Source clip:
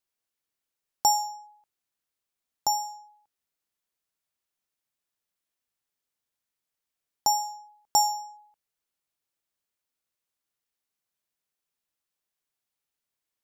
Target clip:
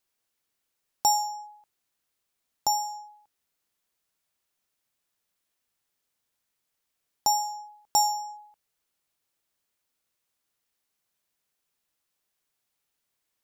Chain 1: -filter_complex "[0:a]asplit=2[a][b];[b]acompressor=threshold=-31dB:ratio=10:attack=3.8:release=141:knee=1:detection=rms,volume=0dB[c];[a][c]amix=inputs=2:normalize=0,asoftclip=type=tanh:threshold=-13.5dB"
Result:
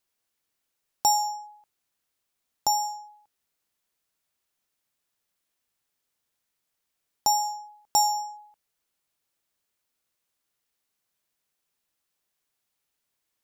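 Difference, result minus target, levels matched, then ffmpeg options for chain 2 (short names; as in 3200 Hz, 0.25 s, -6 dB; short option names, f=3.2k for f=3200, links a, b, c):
compressor: peak gain reduction -9 dB
-filter_complex "[0:a]asplit=2[a][b];[b]acompressor=threshold=-41dB:ratio=10:attack=3.8:release=141:knee=1:detection=rms,volume=0dB[c];[a][c]amix=inputs=2:normalize=0,asoftclip=type=tanh:threshold=-13.5dB"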